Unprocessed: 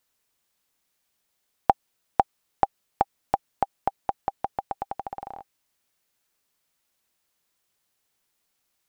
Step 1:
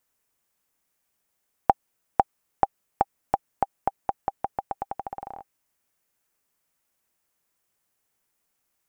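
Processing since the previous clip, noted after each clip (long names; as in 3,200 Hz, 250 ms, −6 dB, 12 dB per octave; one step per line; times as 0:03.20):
parametric band 3,900 Hz −7 dB 0.98 octaves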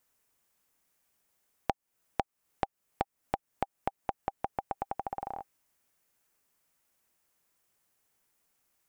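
downward compressor 4 to 1, threshold −31 dBFS, peak gain reduction 15.5 dB
level +1 dB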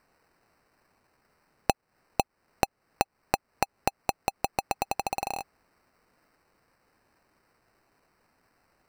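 decimation without filtering 13×
level +6 dB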